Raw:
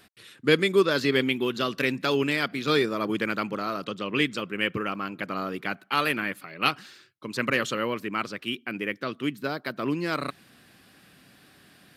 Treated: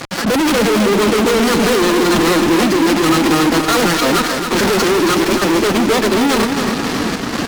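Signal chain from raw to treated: bit-reversed sample order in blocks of 16 samples; Bessel low-pass 3.7 kHz, order 8; in parallel at +0.5 dB: compression 8:1, threshold -41 dBFS, peak gain reduction 24 dB; on the sum: random-step tremolo; tempo 1.6×; hard clipper -31 dBFS, distortion -4 dB; formant-preserving pitch shift +8.5 st; fuzz box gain 58 dB, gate -57 dBFS; feedback delay 271 ms, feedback 54%, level -7 dB

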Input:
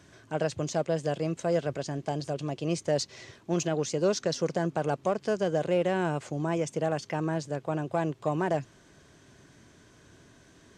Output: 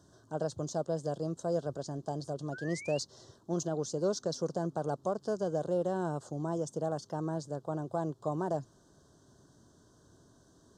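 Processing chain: Butterworth band-stop 2.3 kHz, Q 0.87; painted sound rise, 2.52–2.99 s, 1.4–2.9 kHz -41 dBFS; trim -5 dB

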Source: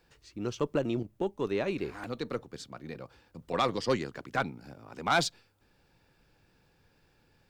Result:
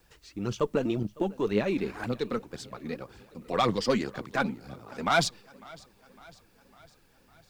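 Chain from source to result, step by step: dynamic bell 200 Hz, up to +7 dB, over -54 dBFS, Q 5; in parallel at -3 dB: level held to a coarse grid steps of 21 dB; on the sum: vibrato 2.1 Hz 47 cents; phaser 1.9 Hz, delay 4.8 ms, feedback 49%; word length cut 12-bit, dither triangular; modulated delay 553 ms, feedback 57%, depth 68 cents, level -23 dB

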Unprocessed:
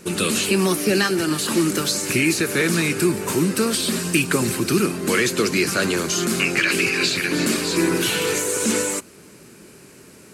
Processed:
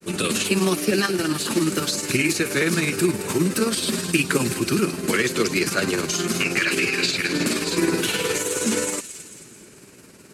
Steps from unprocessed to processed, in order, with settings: granulator 92 ms, grains 19 per s, spray 11 ms, pitch spread up and down by 0 st; on a send: feedback echo behind a high-pass 219 ms, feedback 51%, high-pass 2.8 kHz, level -10 dB

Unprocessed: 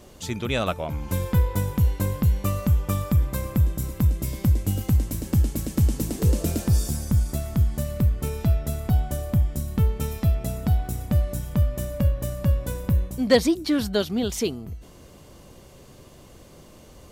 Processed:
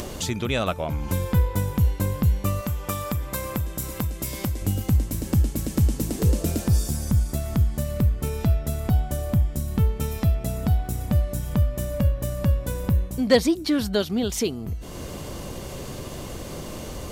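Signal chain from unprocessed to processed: 2.61–4.62 s: bass shelf 320 Hz -11 dB; upward compressor, threshold -21 dBFS

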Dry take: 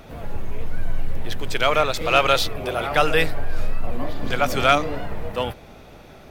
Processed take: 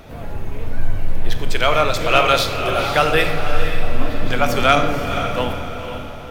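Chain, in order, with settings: echo that smears into a reverb 497 ms, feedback 43%, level -8 dB; on a send at -7 dB: reverberation RT60 0.95 s, pre-delay 3 ms; on the sum: trim +2 dB

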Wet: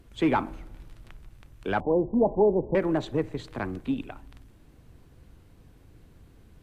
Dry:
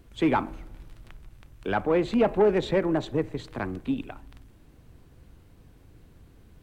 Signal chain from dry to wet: 1.80–2.75 s: steep low-pass 1 kHz 96 dB/octave; MP3 112 kbps 32 kHz

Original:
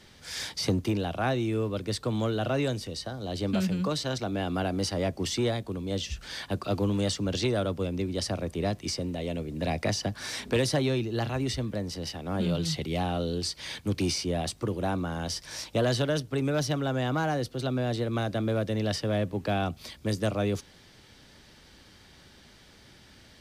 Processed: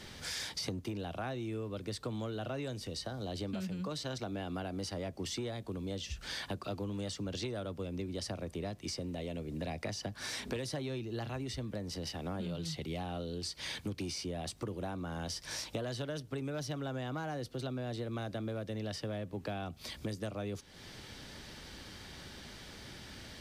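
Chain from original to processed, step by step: compression 5:1, threshold -43 dBFS, peak gain reduction 19 dB; trim +5 dB

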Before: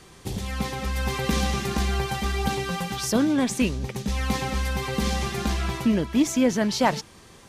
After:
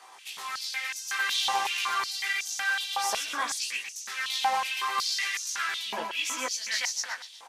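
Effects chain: chorus 0.56 Hz, delay 17 ms, depth 2.1 ms; feedback delay 123 ms, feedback 43%, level -5.5 dB; step-sequenced high-pass 5.4 Hz 860–6100 Hz

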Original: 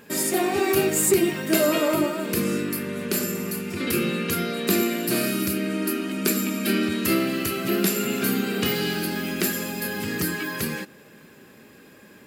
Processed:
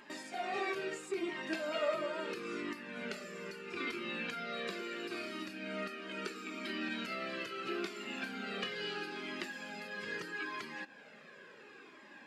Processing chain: high-pass 190 Hz 12 dB/octave; tilt EQ +4.5 dB/octave; compression 2:1, threshold -32 dBFS, peak gain reduction 15 dB; tape spacing loss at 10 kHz 40 dB; Shepard-style flanger falling 0.75 Hz; trim +6 dB

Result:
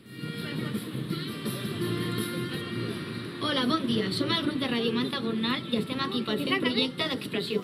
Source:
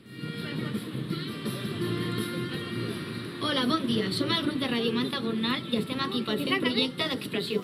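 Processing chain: treble shelf 10 kHz +6.5 dB, from 2.61 s -3.5 dB

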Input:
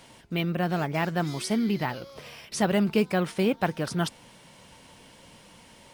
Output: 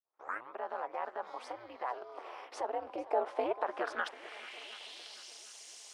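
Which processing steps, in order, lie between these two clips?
tape start-up on the opening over 0.58 s; band-pass sweep 520 Hz -> 6.3 kHz, 2.99–5.45 s; peak limiter -28 dBFS, peak gain reduction 11 dB; compression 2:1, threshold -50 dBFS, peak gain reduction 10 dB; high-pass sweep 980 Hz -> 320 Hz, 2.34–4.55 s; on a send: shuffle delay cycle 740 ms, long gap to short 1.5:1, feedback 36%, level -18 dB; on the sum: ring modulator 120 Hz; high-pass 67 Hz; bass shelf 250 Hz -6 dB; gate with hold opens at -59 dBFS; peaking EQ 170 Hz -12.5 dB 0.49 oct; trim +14.5 dB

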